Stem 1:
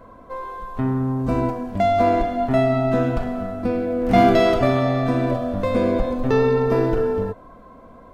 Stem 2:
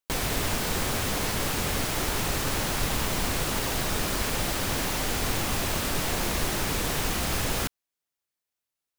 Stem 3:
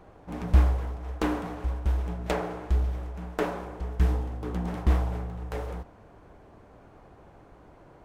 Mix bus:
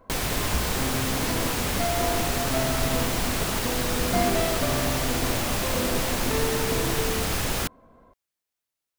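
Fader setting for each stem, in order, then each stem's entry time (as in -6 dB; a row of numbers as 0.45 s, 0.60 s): -10.5 dB, +1.0 dB, -12.0 dB; 0.00 s, 0.00 s, 0.00 s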